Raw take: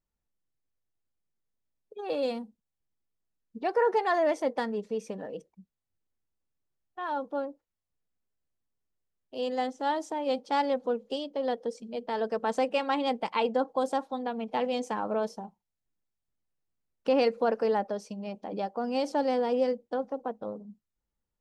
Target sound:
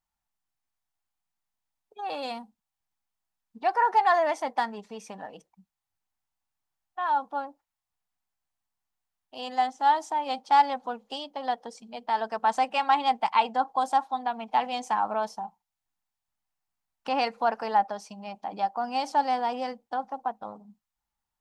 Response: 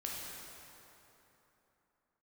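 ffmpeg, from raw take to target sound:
-af "lowshelf=f=630:t=q:w=3:g=-7.5,volume=1.41"

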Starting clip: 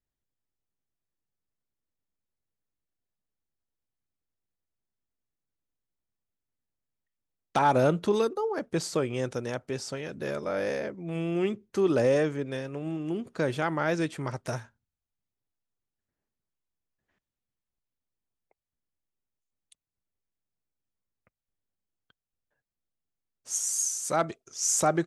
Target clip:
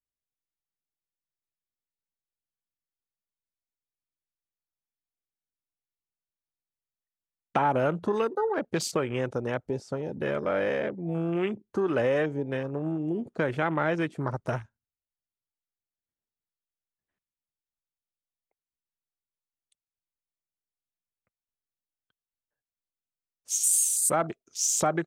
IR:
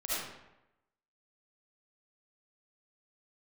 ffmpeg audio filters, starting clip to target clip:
-filter_complex "[0:a]acrossover=split=750|7500[s0][s1][s2];[s0]acompressor=threshold=0.0282:ratio=4[s3];[s1]acompressor=threshold=0.0282:ratio=4[s4];[s2]acompressor=threshold=0.0141:ratio=4[s5];[s3][s4][s5]amix=inputs=3:normalize=0,afwtdn=0.00891,asettb=1/sr,asplit=3[s6][s7][s8];[s6]atrim=end=23.634[s9];[s7]atrim=start=23.63:end=24.15,asetpts=PTS-STARTPTS,afade=t=in:d=0.004:c=qsin,afade=t=out:st=0.516:d=0.004:c=qsin,highshelf=f=7400:t=q:w=3:g=6.5[s10];[s8]atrim=start=24.146[s11];[s9][s10]acrossfade=d=0.004:c1=hsin:c2=qsin[s12];[s12][s11]acrossfade=d=0.004:c1=qsin:c2=hsin,volume=1.68"

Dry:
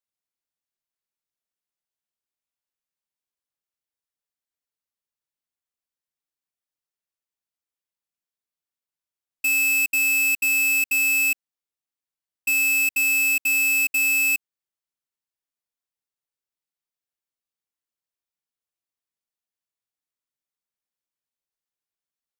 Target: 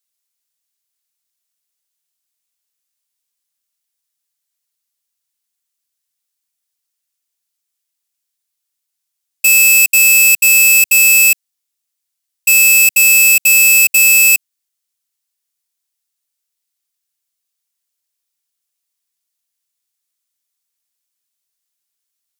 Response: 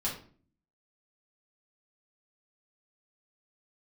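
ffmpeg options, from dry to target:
-filter_complex "[0:a]highshelf=f=11000:g=-9,acrossover=split=230|1500[s0][s1][s2];[s1]alimiter=level_in=13.3:limit=0.0631:level=0:latency=1,volume=0.075[s3];[s0][s3][s2]amix=inputs=3:normalize=0,crystalizer=i=8:c=0"

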